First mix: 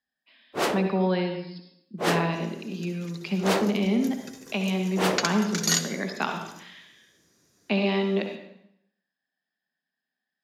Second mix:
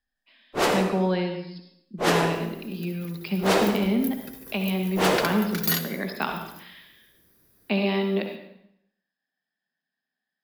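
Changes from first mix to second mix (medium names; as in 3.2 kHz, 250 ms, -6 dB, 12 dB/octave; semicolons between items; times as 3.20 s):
first sound: send on; second sound: remove resonant low-pass 6.6 kHz, resonance Q 4.8; master: remove high-pass 110 Hz 12 dB/octave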